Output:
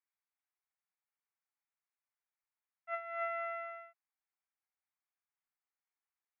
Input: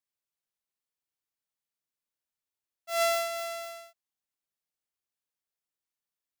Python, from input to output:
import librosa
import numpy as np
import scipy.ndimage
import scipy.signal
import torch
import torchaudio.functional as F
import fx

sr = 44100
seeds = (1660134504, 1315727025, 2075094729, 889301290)

y = scipy.signal.sosfilt(scipy.signal.ellip(3, 1.0, 40, [740.0, 2300.0], 'bandpass', fs=sr, output='sos'), x)
y = fx.over_compress(y, sr, threshold_db=-35.0, ratio=-0.5)
y = F.gain(torch.from_numpy(y), -2.0).numpy()